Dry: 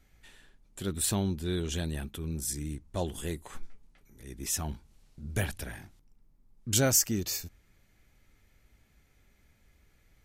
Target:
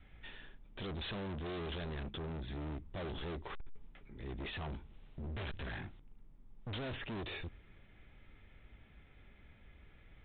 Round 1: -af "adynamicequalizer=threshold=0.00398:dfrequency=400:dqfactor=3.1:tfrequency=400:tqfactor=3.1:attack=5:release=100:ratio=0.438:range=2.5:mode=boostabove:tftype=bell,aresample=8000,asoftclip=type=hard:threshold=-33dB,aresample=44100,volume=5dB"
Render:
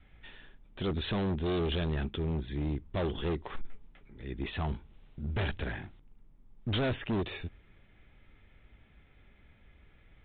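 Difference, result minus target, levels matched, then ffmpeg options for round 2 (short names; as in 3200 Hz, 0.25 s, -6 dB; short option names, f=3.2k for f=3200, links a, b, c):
hard clip: distortion -5 dB
-af "adynamicequalizer=threshold=0.00398:dfrequency=400:dqfactor=3.1:tfrequency=400:tqfactor=3.1:attack=5:release=100:ratio=0.438:range=2.5:mode=boostabove:tftype=bell,aresample=8000,asoftclip=type=hard:threshold=-45dB,aresample=44100,volume=5dB"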